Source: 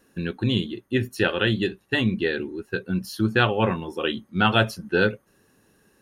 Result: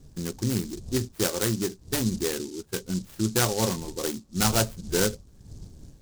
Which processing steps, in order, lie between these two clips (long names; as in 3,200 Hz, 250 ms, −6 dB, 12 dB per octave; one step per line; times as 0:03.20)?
wind on the microphone 110 Hz −40 dBFS
low-pass filter 3,000 Hz 12 dB per octave
short delay modulated by noise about 5,700 Hz, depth 0.14 ms
level −3.5 dB